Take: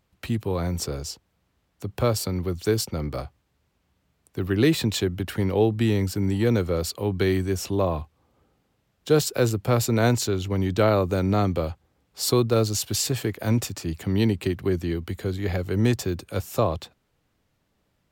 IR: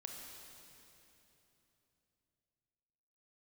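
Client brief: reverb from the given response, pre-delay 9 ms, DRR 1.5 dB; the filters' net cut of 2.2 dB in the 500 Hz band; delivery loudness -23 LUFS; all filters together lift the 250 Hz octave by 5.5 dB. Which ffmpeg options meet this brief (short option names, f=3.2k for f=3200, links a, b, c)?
-filter_complex "[0:a]equalizer=f=250:t=o:g=9,equalizer=f=500:t=o:g=-6.5,asplit=2[a][b];[1:a]atrim=start_sample=2205,adelay=9[c];[b][c]afir=irnorm=-1:irlink=0,volume=1.5dB[d];[a][d]amix=inputs=2:normalize=0,volume=-3.5dB"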